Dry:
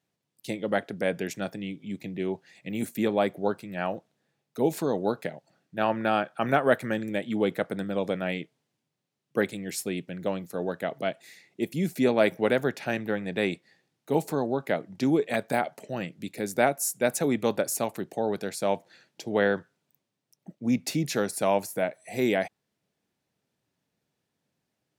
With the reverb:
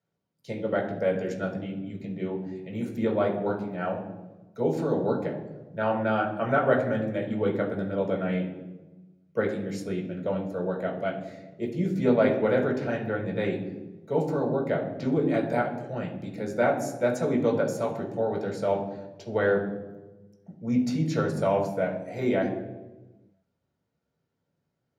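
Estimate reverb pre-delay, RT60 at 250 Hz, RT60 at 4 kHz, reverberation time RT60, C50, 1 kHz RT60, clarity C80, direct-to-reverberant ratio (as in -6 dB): 3 ms, 1.5 s, 0.75 s, 1.1 s, 7.0 dB, 1.0 s, 9.5 dB, -3.0 dB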